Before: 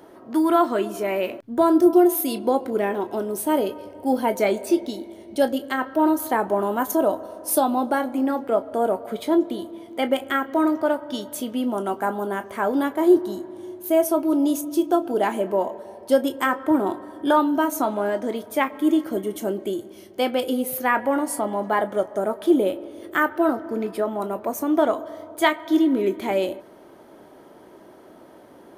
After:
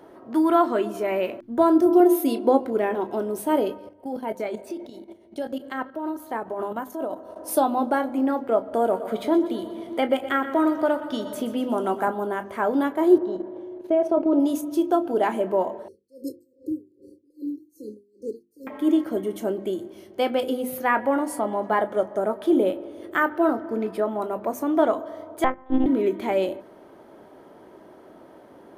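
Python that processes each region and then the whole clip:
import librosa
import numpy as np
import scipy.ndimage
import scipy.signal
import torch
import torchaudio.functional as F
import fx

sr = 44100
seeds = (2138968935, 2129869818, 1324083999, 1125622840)

y = fx.chain(x, sr, fx.brickwall_highpass(low_hz=220.0),
    fx.low_shelf(hz=400.0, db=7.0), at=(2.0, 2.6))
y = fx.chain(y, sr, fx.level_steps(step_db=13),
    fx.tremolo(hz=7.3, depth=0.39), at=(3.75, 7.36))
y = fx.chain(y, sr, fx.echo_feedback(ms=121, feedback_pct=53, wet_db=-13.5),
    fx.band_squash(depth_pct=40), at=(8.73, 12.08))
y = fx.chain(y, sr, fx.lowpass(hz=3400.0, slope=12),
    fx.peak_eq(hz=500.0, db=9.5, octaves=0.92),
    fx.level_steps(step_db=9), at=(13.18, 14.4))
y = fx.chain(y, sr, fx.brickwall_bandstop(low_hz=540.0, high_hz=4100.0),
    fx.peak_eq(hz=220.0, db=-8.5, octaves=0.95),
    fx.tremolo_db(hz=2.5, depth_db=34), at=(15.88, 18.67))
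y = fx.chain(y, sr, fx.lowpass(hz=1400.0, slope=12),
    fx.lpc_monotone(seeds[0], pitch_hz=260.0, order=10),
    fx.upward_expand(threshold_db=-33.0, expansion=1.5), at=(25.44, 25.86))
y = fx.high_shelf(y, sr, hz=3500.0, db=-7.5)
y = fx.hum_notches(y, sr, base_hz=50, count=7)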